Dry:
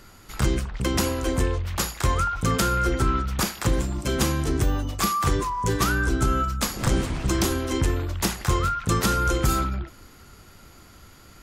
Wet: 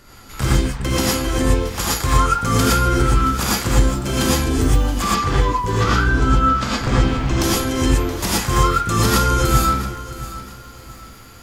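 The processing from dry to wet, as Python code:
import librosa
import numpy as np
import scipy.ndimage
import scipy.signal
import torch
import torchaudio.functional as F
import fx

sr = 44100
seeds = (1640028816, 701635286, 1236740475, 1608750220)

y = fx.lowpass(x, sr, hz=4400.0, slope=12, at=(5.02, 7.41))
y = fx.rev_gated(y, sr, seeds[0], gate_ms=140, shape='rising', drr_db=-6.0)
y = fx.echo_crushed(y, sr, ms=673, feedback_pct=35, bits=7, wet_db=-15.0)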